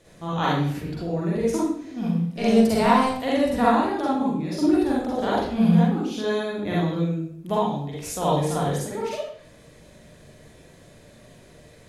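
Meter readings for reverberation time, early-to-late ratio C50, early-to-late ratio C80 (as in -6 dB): 0.65 s, -1.5 dB, 4.0 dB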